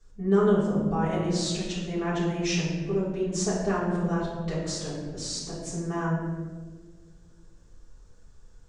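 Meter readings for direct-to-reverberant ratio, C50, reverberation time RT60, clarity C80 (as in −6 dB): −10.0 dB, 1.0 dB, 1.6 s, 3.0 dB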